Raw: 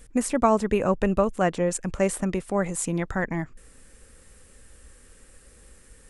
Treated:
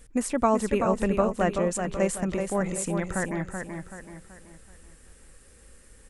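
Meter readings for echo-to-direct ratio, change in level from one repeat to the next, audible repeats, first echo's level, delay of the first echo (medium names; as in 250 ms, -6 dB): -5.0 dB, -7.5 dB, 4, -6.0 dB, 380 ms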